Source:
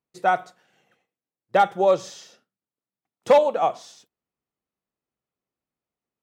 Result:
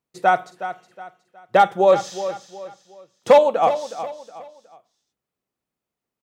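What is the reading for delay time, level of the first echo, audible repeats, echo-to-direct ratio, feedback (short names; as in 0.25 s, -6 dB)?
0.366 s, -12.0 dB, 3, -11.5 dB, 34%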